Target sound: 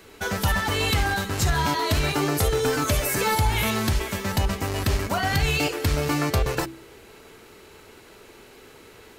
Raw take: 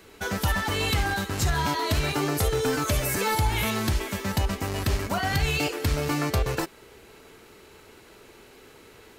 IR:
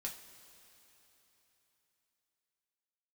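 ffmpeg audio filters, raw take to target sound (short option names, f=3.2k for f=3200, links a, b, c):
-af "bandreject=f=65.82:t=h:w=4,bandreject=f=131.64:t=h:w=4,bandreject=f=197.46:t=h:w=4,bandreject=f=263.28:t=h:w=4,bandreject=f=329.1:t=h:w=4,volume=2.5dB"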